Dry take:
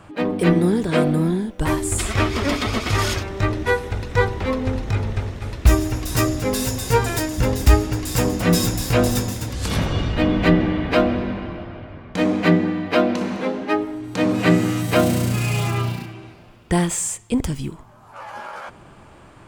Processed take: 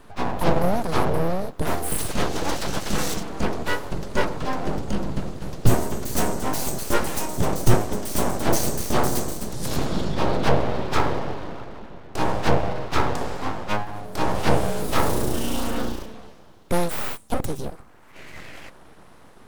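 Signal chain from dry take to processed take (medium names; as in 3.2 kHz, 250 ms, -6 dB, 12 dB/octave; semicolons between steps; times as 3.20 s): formant shift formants +3 st; peaking EQ 2.2 kHz -10 dB 1.3 oct; full-wave rectifier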